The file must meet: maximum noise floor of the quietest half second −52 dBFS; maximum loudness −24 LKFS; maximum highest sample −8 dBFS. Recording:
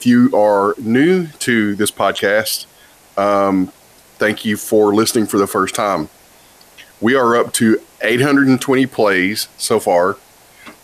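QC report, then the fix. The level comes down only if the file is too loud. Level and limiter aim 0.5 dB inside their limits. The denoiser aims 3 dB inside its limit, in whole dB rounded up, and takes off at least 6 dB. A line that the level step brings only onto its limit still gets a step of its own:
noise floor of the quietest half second −47 dBFS: out of spec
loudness −15.0 LKFS: out of spec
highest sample −3.0 dBFS: out of spec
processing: level −9.5 dB

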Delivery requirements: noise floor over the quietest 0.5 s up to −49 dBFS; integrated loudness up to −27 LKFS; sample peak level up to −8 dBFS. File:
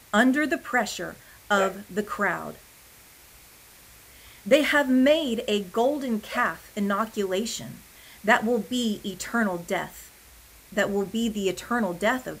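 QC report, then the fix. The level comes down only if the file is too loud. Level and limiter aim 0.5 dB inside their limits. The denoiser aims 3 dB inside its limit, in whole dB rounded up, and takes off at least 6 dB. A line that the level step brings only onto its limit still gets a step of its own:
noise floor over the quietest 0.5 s −51 dBFS: in spec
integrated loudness −25.5 LKFS: out of spec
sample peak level −5.0 dBFS: out of spec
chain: level −2 dB
brickwall limiter −8.5 dBFS

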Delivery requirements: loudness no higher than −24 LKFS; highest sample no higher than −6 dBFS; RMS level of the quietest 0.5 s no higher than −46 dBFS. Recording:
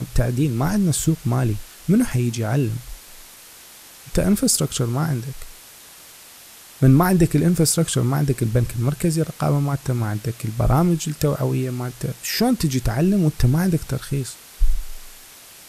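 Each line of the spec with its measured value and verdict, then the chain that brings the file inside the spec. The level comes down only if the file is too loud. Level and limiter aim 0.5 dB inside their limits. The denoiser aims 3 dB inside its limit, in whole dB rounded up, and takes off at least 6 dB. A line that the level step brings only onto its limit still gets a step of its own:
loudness −20.5 LKFS: out of spec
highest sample −3.5 dBFS: out of spec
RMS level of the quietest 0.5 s −44 dBFS: out of spec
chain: level −4 dB

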